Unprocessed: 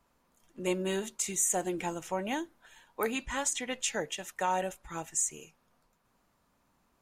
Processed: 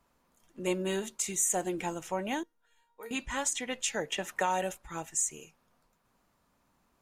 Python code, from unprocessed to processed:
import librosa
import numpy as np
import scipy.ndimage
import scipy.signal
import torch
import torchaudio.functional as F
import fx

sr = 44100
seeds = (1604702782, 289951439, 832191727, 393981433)

y = fx.comb_fb(x, sr, f0_hz=470.0, decay_s=0.3, harmonics='all', damping=0.0, mix_pct=90, at=(2.43, 3.11))
y = fx.band_squash(y, sr, depth_pct=70, at=(4.12, 4.78))